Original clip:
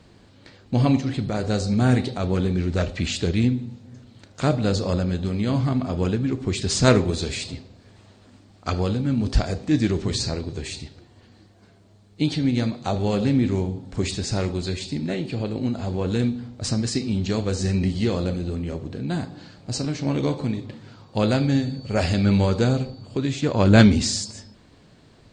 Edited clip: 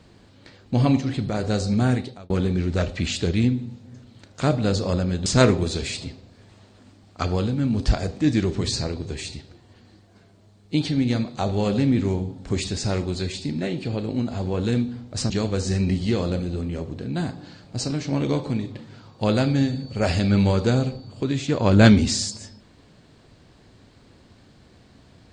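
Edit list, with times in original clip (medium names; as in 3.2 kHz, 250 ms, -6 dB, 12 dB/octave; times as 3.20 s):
1.77–2.30 s: fade out
5.26–6.73 s: delete
16.77–17.24 s: delete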